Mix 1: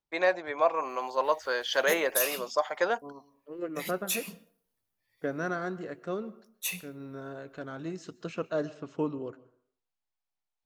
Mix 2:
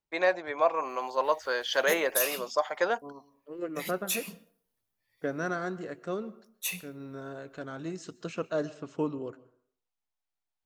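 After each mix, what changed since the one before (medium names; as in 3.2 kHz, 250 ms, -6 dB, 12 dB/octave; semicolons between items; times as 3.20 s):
second voice: remove distance through air 57 m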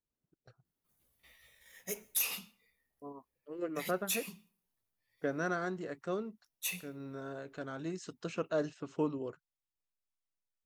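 first voice: muted; second voice: send off; background -3.5 dB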